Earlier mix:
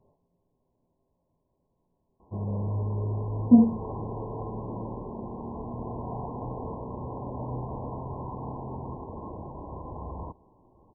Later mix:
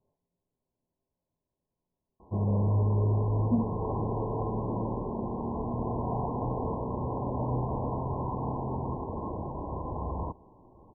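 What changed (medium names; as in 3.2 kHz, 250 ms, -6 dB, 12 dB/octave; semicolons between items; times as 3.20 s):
speech -12.0 dB; background +4.0 dB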